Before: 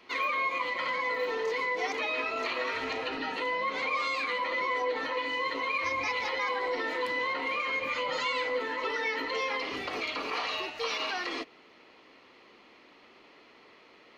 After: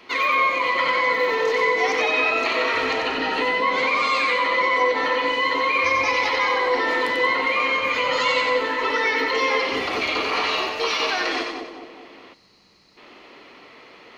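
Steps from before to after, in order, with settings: two-band feedback delay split 890 Hz, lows 209 ms, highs 92 ms, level -4 dB; time-frequency box 12.34–12.97 s, 210–3800 Hz -14 dB; trim +8.5 dB

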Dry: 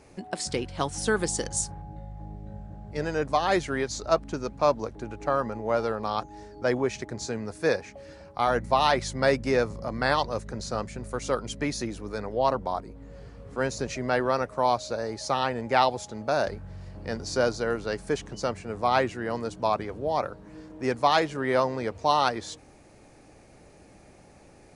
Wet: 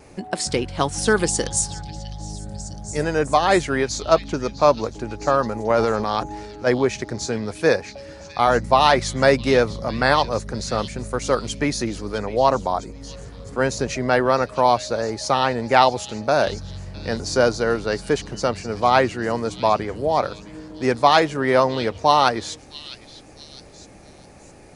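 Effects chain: vibrato 0.66 Hz 7.3 cents; 5.70–6.67 s: transient shaper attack -6 dB, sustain +6 dB; repeats whose band climbs or falls 657 ms, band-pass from 3.5 kHz, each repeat 0.7 oct, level -9.5 dB; trim +7 dB

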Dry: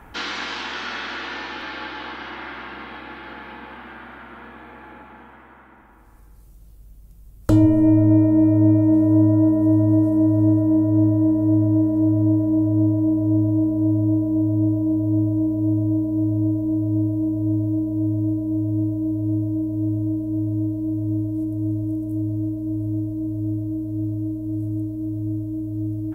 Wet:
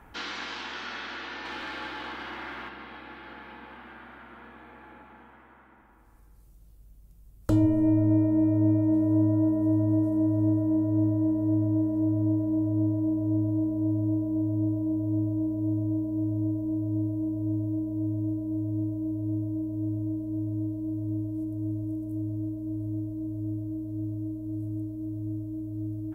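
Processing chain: 1.45–2.69 s: waveshaping leveller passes 1; trim -7.5 dB

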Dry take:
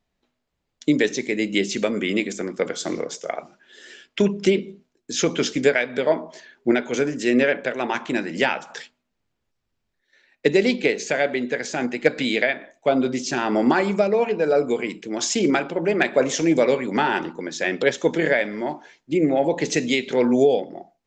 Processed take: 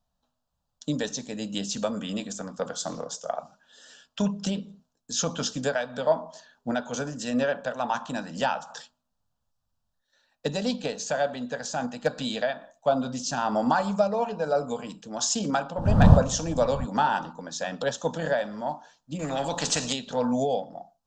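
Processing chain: 15.76–16.84 s: wind noise 230 Hz -24 dBFS; static phaser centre 890 Hz, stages 4; 19.19–19.93 s: spectrum-flattening compressor 2:1

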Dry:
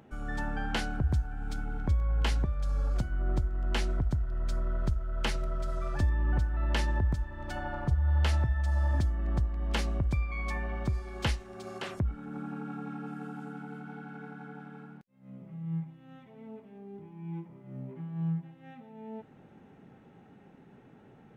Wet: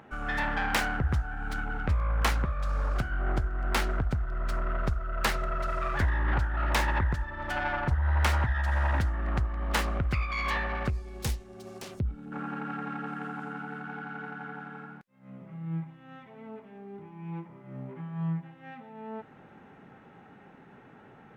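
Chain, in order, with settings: self-modulated delay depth 0.41 ms; peaking EQ 1.4 kHz +11 dB 2.2 oct, from 10.90 s -7 dB, from 12.32 s +10 dB

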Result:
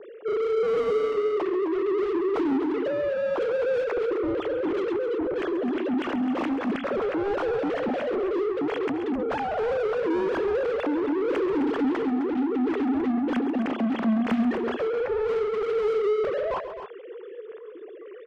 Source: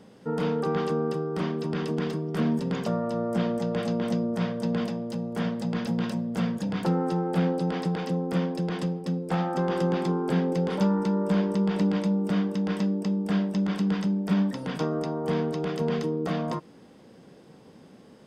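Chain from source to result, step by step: formants replaced by sine waves; rotary cabinet horn 0.75 Hz; overdrive pedal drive 25 dB, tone 1.2 kHz, clips at -20 dBFS; on a send: multi-tap echo 135/260 ms -12.5/-10.5 dB

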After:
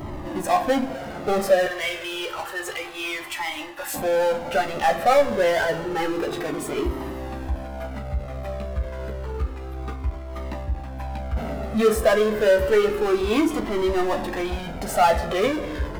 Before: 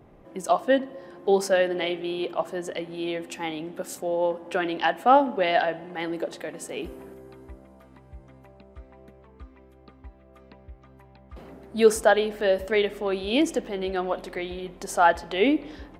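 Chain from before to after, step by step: 1.66–3.94 s: high-pass 1.3 kHz 12 dB/octave; expander -43 dBFS; peaking EQ 6.3 kHz -14.5 dB 1.8 oct; upward compressor, threshold -38 dBFS; power-law waveshaper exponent 0.5; reverberation, pre-delay 14 ms, DRR 5 dB; Shepard-style flanger falling 0.29 Hz

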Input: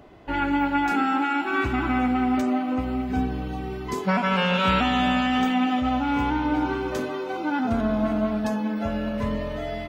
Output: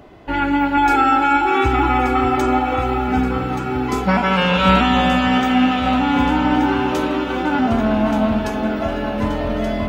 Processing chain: 0.77–3.08 s: comb 2.3 ms, depth 83%; echo whose repeats swap between lows and highs 589 ms, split 1.3 kHz, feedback 74%, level -5.5 dB; trim +5.5 dB

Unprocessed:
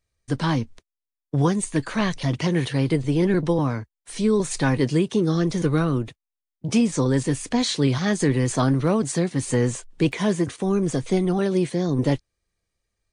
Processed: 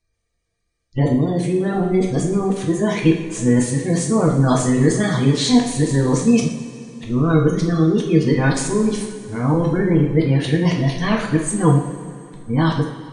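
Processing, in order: reverse the whole clip; spectral gate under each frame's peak -30 dB strong; two-slope reverb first 0.54 s, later 2.6 s, from -13 dB, DRR -0.5 dB; trim +1.5 dB

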